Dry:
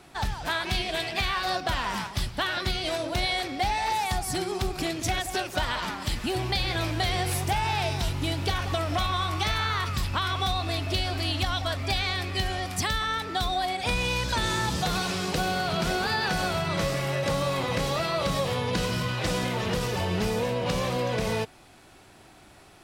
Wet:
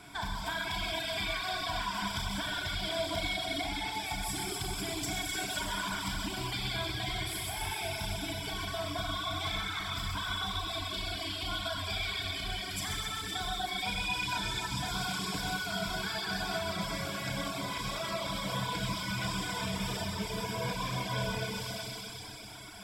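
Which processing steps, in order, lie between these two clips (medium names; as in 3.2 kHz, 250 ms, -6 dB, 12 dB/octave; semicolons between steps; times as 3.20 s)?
peaking EQ 480 Hz -10 dB 0.63 oct; hum notches 60/120 Hz; on a send: feedback echo behind a high-pass 127 ms, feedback 76%, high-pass 3.9 kHz, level -4.5 dB; on the sum: saturation -18.5 dBFS, distortion -22 dB; compression, threshold -37 dBFS, peak gain reduction 12 dB; Schroeder reverb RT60 3.3 s, combs from 31 ms, DRR -4.5 dB; reverb removal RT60 0.95 s; rippled EQ curve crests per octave 1.7, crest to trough 11 dB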